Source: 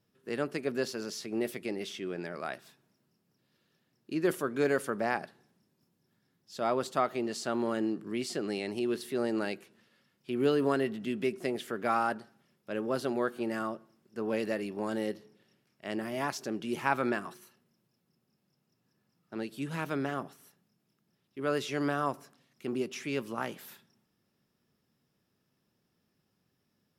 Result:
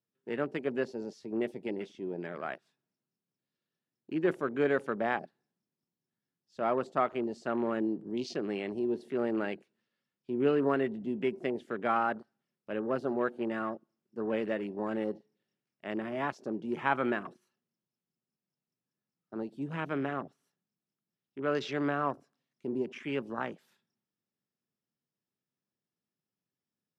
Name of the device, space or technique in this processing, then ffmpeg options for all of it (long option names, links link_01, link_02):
over-cleaned archive recording: -af "highpass=110,lowpass=7700,afwtdn=0.00794"